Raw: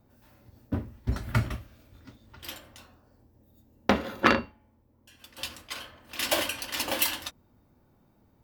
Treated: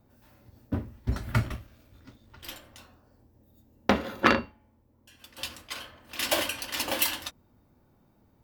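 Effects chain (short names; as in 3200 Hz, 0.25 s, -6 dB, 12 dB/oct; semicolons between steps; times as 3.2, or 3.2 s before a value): 1.41–2.73 half-wave gain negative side -3 dB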